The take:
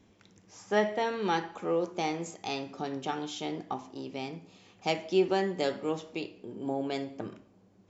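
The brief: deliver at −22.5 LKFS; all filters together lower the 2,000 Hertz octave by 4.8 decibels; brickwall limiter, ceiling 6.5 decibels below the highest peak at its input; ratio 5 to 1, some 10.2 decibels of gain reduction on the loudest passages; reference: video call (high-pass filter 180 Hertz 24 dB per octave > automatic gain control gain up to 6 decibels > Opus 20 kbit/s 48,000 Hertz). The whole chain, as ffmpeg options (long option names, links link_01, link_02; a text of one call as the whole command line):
ffmpeg -i in.wav -af "equalizer=frequency=2000:width_type=o:gain=-6,acompressor=threshold=-32dB:ratio=5,alimiter=level_in=4dB:limit=-24dB:level=0:latency=1,volume=-4dB,highpass=frequency=180:width=0.5412,highpass=frequency=180:width=1.3066,dynaudnorm=maxgain=6dB,volume=17.5dB" -ar 48000 -c:a libopus -b:a 20k out.opus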